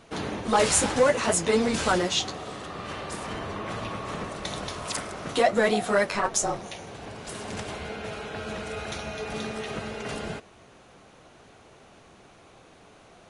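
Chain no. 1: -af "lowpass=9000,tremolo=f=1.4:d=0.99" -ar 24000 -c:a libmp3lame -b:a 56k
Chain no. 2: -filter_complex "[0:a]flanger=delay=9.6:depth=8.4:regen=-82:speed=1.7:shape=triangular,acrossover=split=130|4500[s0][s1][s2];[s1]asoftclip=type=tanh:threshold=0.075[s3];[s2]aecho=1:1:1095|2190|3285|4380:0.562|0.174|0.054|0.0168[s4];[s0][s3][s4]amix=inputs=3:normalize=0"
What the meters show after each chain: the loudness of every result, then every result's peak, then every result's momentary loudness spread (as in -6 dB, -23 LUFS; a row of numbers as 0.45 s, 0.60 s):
-31.5 LUFS, -33.0 LUFS; -11.0 dBFS, -14.0 dBFS; 18 LU, 12 LU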